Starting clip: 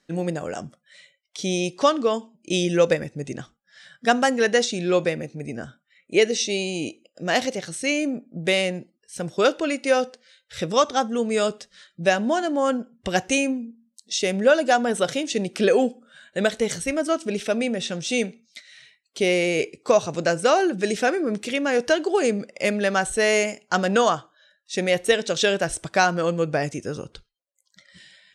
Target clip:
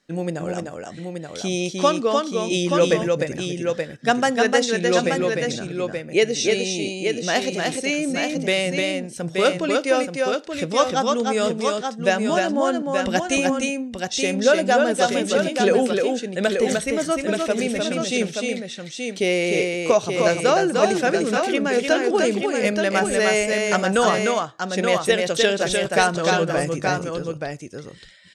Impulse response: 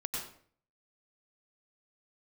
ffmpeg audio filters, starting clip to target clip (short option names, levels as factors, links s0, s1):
-af "aecho=1:1:302|878:0.668|0.531"